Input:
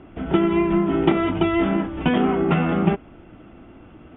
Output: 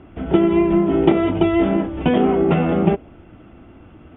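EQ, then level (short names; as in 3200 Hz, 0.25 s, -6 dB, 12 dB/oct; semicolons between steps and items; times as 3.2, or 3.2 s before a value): dynamic EQ 1300 Hz, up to -4 dB, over -39 dBFS, Q 1.2; dynamic EQ 520 Hz, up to +7 dB, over -35 dBFS, Q 1; bell 79 Hz +5 dB 1.1 oct; 0.0 dB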